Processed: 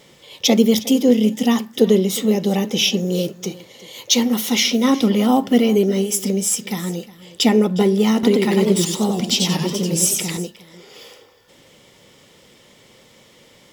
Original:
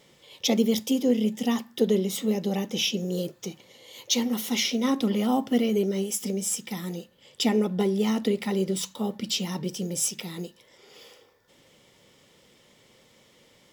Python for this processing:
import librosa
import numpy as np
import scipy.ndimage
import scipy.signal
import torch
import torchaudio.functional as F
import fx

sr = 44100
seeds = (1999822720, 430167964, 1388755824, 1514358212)

y = x + 10.0 ** (-19.0 / 20.0) * np.pad(x, (int(360 * sr / 1000.0), 0))[:len(x)]
y = fx.echo_warbled(y, sr, ms=95, feedback_pct=39, rate_hz=2.8, cents=177, wet_db=-3.0, at=(8.13, 10.37))
y = y * librosa.db_to_amplitude(8.5)